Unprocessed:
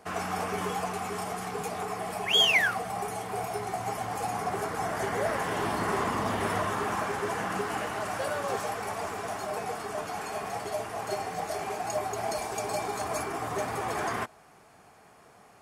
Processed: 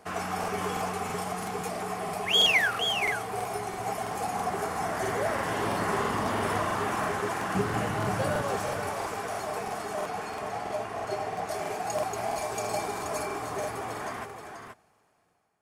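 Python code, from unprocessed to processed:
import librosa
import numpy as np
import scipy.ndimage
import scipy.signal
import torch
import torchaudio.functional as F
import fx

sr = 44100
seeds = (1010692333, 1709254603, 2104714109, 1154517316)

y = fx.fade_out_tail(x, sr, length_s=2.8)
y = fx.peak_eq(y, sr, hz=120.0, db=13.5, octaves=2.1, at=(7.55, 8.42))
y = fx.lowpass(y, sr, hz=4000.0, slope=6, at=(10.02, 11.49))
y = y + 10.0 ** (-7.0 / 20.0) * np.pad(y, (int(479 * sr / 1000.0), 0))[:len(y)]
y = fx.buffer_crackle(y, sr, first_s=0.39, period_s=0.33, block=2048, kind='repeat')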